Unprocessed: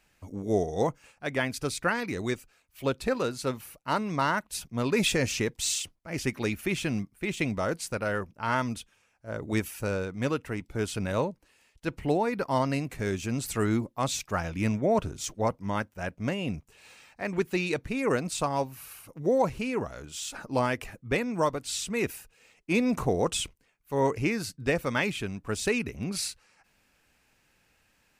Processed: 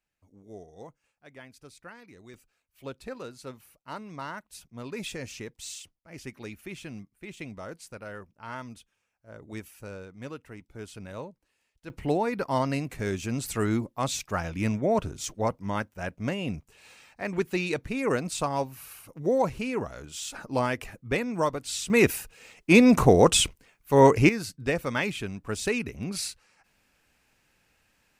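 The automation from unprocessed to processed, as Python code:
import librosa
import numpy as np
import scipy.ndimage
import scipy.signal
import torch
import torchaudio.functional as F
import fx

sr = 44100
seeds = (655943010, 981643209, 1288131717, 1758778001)

y = fx.gain(x, sr, db=fx.steps((0.0, -19.0), (2.34, -11.0), (11.9, 0.0), (21.9, 9.0), (24.29, -0.5)))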